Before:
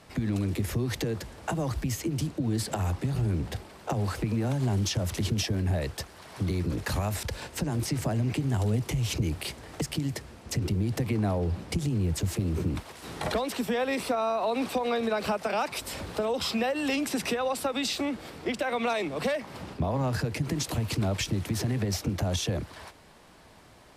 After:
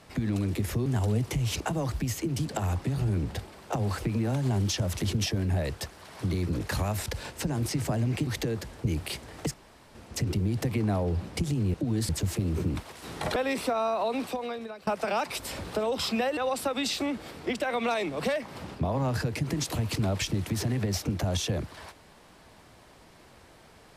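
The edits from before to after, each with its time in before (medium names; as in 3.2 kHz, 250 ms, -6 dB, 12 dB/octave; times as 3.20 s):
0.86–1.43 s: swap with 8.44–9.19 s
2.31–2.66 s: move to 12.09 s
9.89–10.30 s: room tone
13.36–13.78 s: delete
14.40–15.29 s: fade out linear, to -23 dB
16.79–17.36 s: delete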